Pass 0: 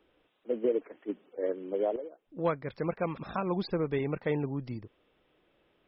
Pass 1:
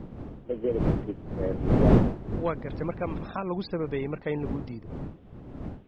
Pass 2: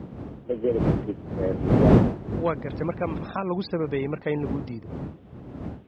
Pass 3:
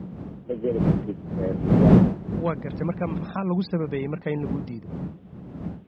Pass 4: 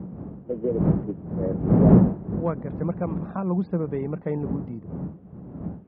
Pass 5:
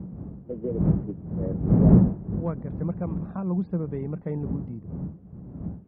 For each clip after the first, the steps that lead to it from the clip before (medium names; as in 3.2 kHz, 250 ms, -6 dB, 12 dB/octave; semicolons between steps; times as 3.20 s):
wind noise 250 Hz -29 dBFS
high-pass 67 Hz; trim +3.5 dB
peaking EQ 180 Hz +9.5 dB 0.43 oct; trim -2 dB
low-pass 1.2 kHz 12 dB/octave
bass shelf 190 Hz +11 dB; trim -7 dB